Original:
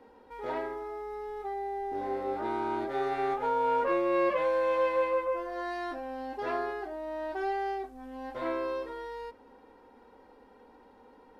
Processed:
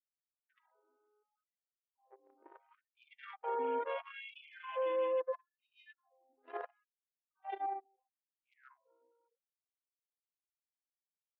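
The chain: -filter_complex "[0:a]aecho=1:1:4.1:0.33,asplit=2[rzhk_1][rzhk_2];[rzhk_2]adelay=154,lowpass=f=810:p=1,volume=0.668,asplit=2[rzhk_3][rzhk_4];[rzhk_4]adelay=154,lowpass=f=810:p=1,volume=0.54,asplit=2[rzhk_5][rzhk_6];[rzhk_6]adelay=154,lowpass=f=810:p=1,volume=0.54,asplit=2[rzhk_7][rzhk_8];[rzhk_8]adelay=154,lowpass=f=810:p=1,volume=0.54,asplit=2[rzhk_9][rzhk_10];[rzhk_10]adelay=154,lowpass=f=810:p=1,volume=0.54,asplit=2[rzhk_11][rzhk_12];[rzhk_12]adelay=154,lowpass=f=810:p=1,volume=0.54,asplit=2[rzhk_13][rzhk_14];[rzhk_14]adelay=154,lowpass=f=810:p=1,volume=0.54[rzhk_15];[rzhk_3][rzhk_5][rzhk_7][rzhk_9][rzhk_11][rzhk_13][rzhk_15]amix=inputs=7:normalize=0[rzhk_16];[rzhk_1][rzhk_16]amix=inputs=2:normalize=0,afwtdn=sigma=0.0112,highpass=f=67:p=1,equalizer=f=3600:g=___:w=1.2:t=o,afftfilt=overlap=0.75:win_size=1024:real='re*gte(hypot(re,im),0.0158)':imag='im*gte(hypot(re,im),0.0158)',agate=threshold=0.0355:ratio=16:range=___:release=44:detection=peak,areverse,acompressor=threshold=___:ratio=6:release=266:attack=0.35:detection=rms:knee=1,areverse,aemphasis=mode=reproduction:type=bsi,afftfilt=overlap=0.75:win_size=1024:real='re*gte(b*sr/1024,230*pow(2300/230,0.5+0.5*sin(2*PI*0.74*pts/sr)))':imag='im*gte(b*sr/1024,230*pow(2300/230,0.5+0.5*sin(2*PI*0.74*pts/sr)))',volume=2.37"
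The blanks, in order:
14, 0.00501, 0.01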